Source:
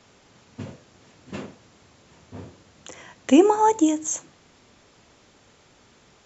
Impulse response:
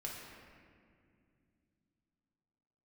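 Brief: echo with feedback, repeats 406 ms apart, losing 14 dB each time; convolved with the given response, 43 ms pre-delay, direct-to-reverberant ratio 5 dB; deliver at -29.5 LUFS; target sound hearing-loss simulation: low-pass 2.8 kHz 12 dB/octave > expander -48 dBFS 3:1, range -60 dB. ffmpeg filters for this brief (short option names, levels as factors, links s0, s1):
-filter_complex "[0:a]aecho=1:1:406|812:0.2|0.0399,asplit=2[s0][s1];[1:a]atrim=start_sample=2205,adelay=43[s2];[s1][s2]afir=irnorm=-1:irlink=0,volume=0.596[s3];[s0][s3]amix=inputs=2:normalize=0,lowpass=2800,agate=range=0.001:threshold=0.00398:ratio=3,volume=0.299"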